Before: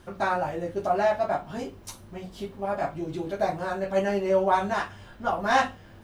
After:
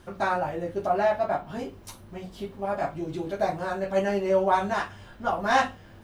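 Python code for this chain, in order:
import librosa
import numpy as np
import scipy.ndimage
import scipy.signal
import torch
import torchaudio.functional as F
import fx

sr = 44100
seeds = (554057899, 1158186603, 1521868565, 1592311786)

y = fx.dynamic_eq(x, sr, hz=6700.0, q=1.0, threshold_db=-54.0, ratio=4.0, max_db=-5, at=(0.38, 2.58))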